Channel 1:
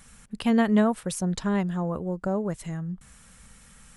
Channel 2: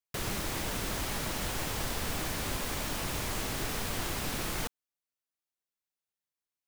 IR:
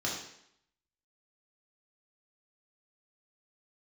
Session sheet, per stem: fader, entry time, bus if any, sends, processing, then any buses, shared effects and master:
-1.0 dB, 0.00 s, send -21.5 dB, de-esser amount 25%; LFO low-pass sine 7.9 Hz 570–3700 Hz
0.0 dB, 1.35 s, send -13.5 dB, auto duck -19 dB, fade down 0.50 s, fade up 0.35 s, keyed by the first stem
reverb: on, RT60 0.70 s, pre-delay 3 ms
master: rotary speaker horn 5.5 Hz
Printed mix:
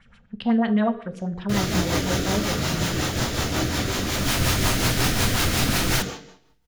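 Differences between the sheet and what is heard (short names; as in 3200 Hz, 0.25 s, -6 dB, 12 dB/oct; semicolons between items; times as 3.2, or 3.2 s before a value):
stem 2 0.0 dB -> +11.0 dB; reverb return +8.0 dB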